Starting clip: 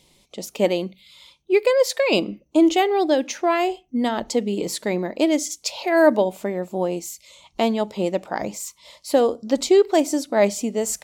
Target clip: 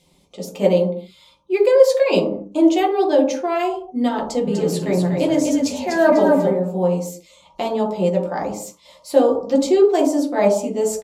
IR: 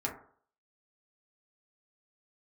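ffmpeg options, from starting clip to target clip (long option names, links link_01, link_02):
-filter_complex "[0:a]asplit=3[link_01][link_02][link_03];[link_01]afade=type=out:start_time=4.45:duration=0.02[link_04];[link_02]asplit=5[link_05][link_06][link_07][link_08][link_09];[link_06]adelay=247,afreqshift=-34,volume=-5.5dB[link_10];[link_07]adelay=494,afreqshift=-68,volume=-14.1dB[link_11];[link_08]adelay=741,afreqshift=-102,volume=-22.8dB[link_12];[link_09]adelay=988,afreqshift=-136,volume=-31.4dB[link_13];[link_05][link_10][link_11][link_12][link_13]amix=inputs=5:normalize=0,afade=type=in:start_time=4.45:duration=0.02,afade=type=out:start_time=6.49:duration=0.02[link_14];[link_03]afade=type=in:start_time=6.49:duration=0.02[link_15];[link_04][link_14][link_15]amix=inputs=3:normalize=0[link_16];[1:a]atrim=start_sample=2205,afade=type=out:start_time=0.21:duration=0.01,atrim=end_sample=9702,asetrate=28665,aresample=44100[link_17];[link_16][link_17]afir=irnorm=-1:irlink=0,volume=-5.5dB"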